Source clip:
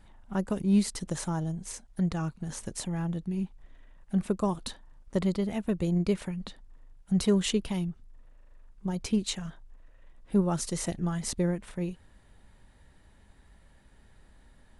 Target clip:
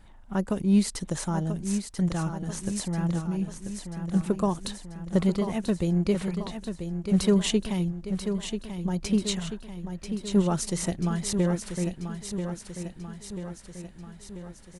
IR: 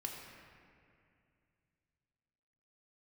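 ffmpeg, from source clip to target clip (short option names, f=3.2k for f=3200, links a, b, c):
-af "aecho=1:1:988|1976|2964|3952|4940|5928|6916:0.398|0.231|0.134|0.0777|0.0451|0.0261|0.0152,volume=2.5dB"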